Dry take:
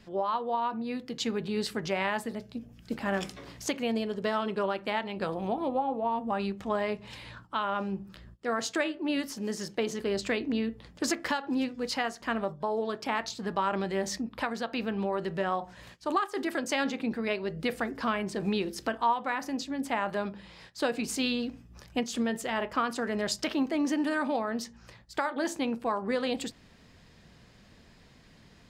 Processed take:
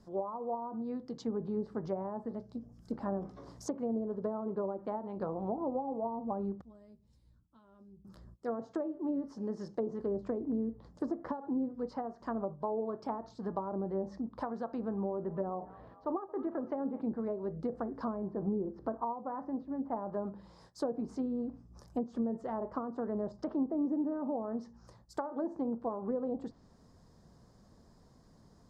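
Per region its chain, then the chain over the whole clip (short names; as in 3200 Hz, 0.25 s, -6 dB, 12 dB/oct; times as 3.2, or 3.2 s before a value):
6.61–8.05 passive tone stack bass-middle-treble 10-0-1 + doubler 13 ms -7 dB
14.94–17.01 LPF 3000 Hz 24 dB/oct + frequency-shifting echo 0.222 s, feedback 62%, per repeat +34 Hz, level -22 dB
18.28–19.96 LPF 1500 Hz + upward compressor, threshold -42 dBFS
whole clip: treble ducked by the level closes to 620 Hz, closed at -25.5 dBFS; EQ curve 1100 Hz 0 dB, 2600 Hz -23 dB, 5300 Hz -3 dB; gain -3.5 dB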